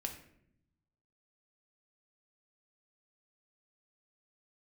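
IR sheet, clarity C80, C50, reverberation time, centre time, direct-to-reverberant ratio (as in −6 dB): 11.5 dB, 9.0 dB, 0.70 s, 17 ms, 3.0 dB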